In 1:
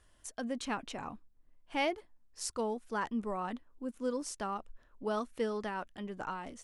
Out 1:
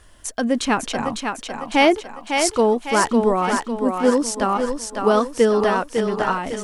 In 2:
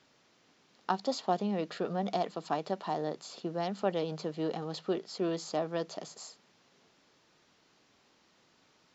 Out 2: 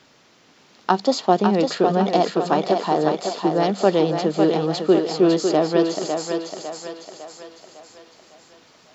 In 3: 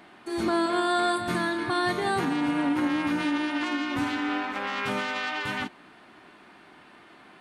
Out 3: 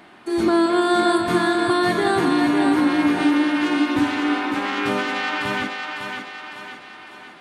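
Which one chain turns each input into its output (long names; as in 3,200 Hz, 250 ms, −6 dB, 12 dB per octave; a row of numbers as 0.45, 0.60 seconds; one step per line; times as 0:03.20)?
feedback echo with a high-pass in the loop 553 ms, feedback 51%, high-pass 240 Hz, level −4.5 dB
dynamic equaliser 350 Hz, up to +5 dB, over −42 dBFS, Q 2.1
loudness normalisation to −20 LKFS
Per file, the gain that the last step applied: +16.0, +12.0, +4.0 decibels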